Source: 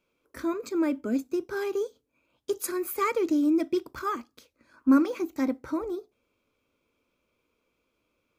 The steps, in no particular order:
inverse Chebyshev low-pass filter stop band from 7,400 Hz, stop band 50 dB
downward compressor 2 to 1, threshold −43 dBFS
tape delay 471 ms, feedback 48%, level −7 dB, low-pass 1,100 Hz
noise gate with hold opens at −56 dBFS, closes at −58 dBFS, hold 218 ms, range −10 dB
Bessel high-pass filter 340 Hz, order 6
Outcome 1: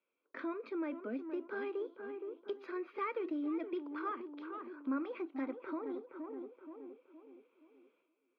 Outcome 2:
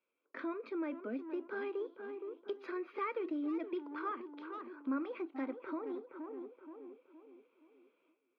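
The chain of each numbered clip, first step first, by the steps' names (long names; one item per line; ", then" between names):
Bessel high-pass filter, then tape delay, then downward compressor, then inverse Chebyshev low-pass filter, then noise gate with hold
inverse Chebyshev low-pass filter, then tape delay, then noise gate with hold, then Bessel high-pass filter, then downward compressor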